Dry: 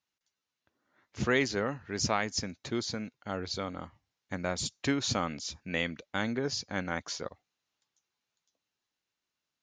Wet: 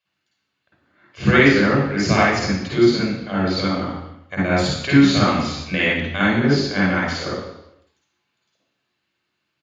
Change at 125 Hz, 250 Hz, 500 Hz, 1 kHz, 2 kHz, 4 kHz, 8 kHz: +17.5, +17.5, +14.0, +13.5, +15.5, +10.5, +3.0 dB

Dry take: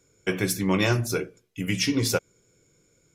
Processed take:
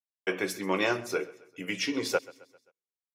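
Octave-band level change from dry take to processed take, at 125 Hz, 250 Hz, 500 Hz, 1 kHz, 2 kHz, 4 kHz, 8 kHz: -18.0, -7.5, -2.0, -1.0, -2.0, -5.5, -9.5 dB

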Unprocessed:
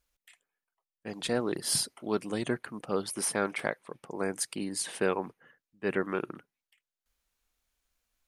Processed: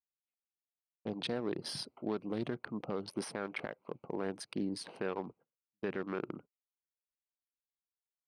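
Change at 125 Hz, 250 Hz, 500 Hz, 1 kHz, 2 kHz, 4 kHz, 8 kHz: -4.0, -4.0, -6.5, -7.5, -9.0, -7.0, -18.0 dB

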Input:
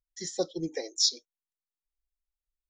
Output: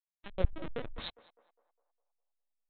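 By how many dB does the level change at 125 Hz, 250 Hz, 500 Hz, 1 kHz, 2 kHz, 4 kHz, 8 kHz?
+7.5 dB, -8.5 dB, -6.5 dB, -1.5 dB, -0.5 dB, -18.0 dB, under -40 dB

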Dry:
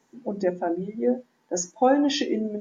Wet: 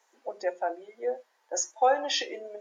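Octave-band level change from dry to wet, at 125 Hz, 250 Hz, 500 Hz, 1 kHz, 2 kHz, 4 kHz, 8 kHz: under -35 dB, -21.5 dB, -5.0 dB, -0.5 dB, 0.0 dB, 0.0 dB, n/a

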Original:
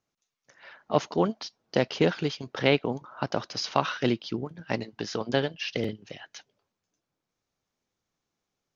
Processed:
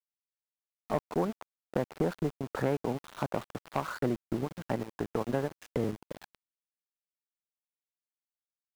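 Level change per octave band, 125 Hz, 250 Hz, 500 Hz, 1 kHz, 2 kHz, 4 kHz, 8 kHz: -3.0 dB, -4.0 dB, -5.0 dB, -5.5 dB, -10.0 dB, -17.5 dB, n/a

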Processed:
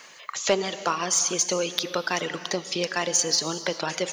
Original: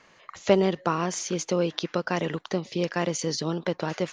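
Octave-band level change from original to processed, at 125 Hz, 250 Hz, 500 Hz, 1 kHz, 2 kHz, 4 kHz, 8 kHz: -8.0, -5.5, -2.0, +1.5, +4.5, +8.0, +11.5 dB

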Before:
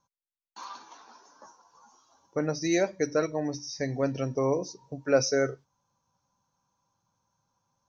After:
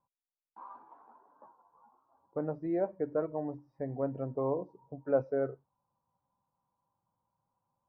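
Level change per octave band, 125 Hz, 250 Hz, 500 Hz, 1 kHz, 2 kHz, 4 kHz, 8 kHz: -6.5 dB, -6.5 dB, -5.0 dB, -5.5 dB, -16.5 dB, under -40 dB, n/a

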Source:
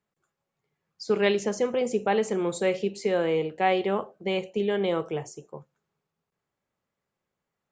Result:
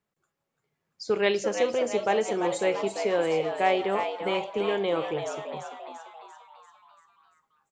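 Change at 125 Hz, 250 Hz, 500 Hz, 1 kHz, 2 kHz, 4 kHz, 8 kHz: -5.0, -3.5, 0.0, +1.5, +1.0, +1.0, +1.0 dB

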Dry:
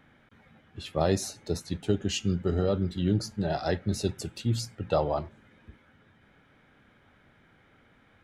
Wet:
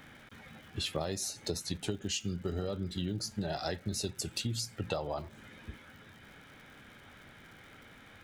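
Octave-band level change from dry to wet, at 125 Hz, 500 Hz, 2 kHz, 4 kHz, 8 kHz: -8.5, -9.0, -2.5, 0.0, +0.5 dB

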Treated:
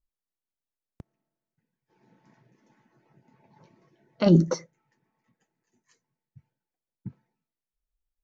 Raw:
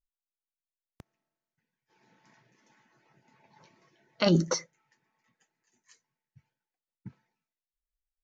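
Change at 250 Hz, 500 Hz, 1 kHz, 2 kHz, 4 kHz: +6.0, +3.5, -1.0, -4.5, -6.5 dB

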